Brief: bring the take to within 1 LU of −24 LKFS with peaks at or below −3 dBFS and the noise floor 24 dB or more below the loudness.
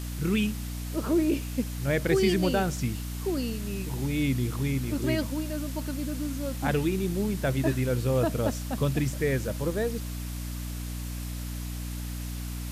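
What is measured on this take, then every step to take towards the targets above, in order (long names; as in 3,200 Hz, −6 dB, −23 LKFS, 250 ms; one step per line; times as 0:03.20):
mains hum 60 Hz; hum harmonics up to 300 Hz; level of the hum −32 dBFS; background noise floor −35 dBFS; target noise floor −53 dBFS; integrated loudness −29.0 LKFS; sample peak −11.5 dBFS; target loudness −24.0 LKFS
→ mains-hum notches 60/120/180/240/300 Hz
noise reduction from a noise print 18 dB
level +5 dB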